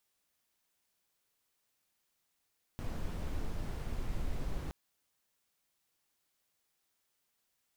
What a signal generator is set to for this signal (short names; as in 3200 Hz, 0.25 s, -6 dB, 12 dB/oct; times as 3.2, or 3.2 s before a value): noise brown, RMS -35.5 dBFS 1.92 s